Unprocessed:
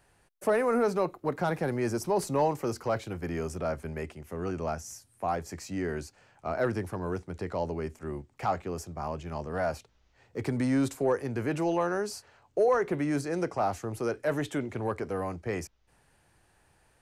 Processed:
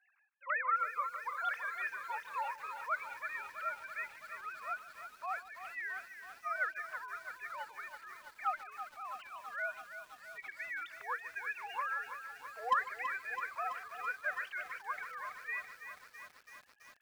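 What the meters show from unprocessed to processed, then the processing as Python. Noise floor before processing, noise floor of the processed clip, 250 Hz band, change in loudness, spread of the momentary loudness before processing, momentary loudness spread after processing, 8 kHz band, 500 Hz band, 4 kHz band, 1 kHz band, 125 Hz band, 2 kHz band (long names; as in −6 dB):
−67 dBFS, −63 dBFS, below −40 dB, −8.5 dB, 10 LU, 13 LU, −16.5 dB, −23.0 dB, −8.0 dB, −4.0 dB, below −40 dB, +3.0 dB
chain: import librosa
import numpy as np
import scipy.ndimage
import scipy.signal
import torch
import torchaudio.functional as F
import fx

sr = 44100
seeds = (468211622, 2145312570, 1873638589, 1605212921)

p1 = fx.sine_speech(x, sr)
p2 = scipy.signal.sosfilt(scipy.signal.butter(4, 1300.0, 'highpass', fs=sr, output='sos'), p1)
p3 = np.clip(10.0 ** (27.0 / 20.0) * p2, -1.0, 1.0) / 10.0 ** (27.0 / 20.0)
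p4 = p3 + fx.echo_single(p3, sr, ms=150, db=-17.5, dry=0)
p5 = fx.echo_crushed(p4, sr, ms=330, feedback_pct=80, bits=10, wet_db=-9.5)
y = p5 * 10.0 ** (5.0 / 20.0)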